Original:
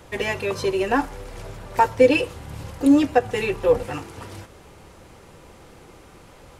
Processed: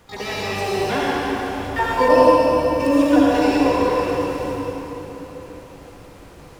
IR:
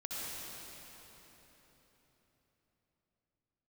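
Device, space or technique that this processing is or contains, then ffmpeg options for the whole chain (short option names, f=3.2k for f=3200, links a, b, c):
shimmer-style reverb: -filter_complex "[0:a]asplit=2[a][b];[b]asetrate=88200,aresample=44100,atempo=0.5,volume=-5dB[c];[a][c]amix=inputs=2:normalize=0[d];[1:a]atrim=start_sample=2205[e];[d][e]afir=irnorm=-1:irlink=0,asettb=1/sr,asplit=3[f][g][h];[f]atrim=end=2.084[i];[g]atrim=start=2.08:end=2.8,asetpts=PTS-STARTPTS,afade=t=in:d=0.004:c=qsin,afade=t=out:st=0.716:d=0.004:c=qsin,equalizer=f=630:t=o:w=0.67:g=8,equalizer=f=2.5k:t=o:w=0.67:g=-8,equalizer=f=6.3k:t=o:w=0.67:g=-7[j];[h]atrim=start=2.796[k];[i][j]acrossfade=d=0.004:c1=hsin:c2=qsin[l];[l][k]acrossfade=d=0.004:c1=qsin:c2=hsin,volume=-1dB"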